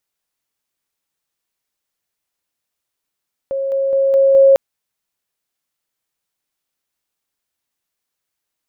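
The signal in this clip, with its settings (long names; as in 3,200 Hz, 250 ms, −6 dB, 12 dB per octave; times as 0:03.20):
level staircase 544 Hz −17.5 dBFS, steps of 3 dB, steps 5, 0.21 s 0.00 s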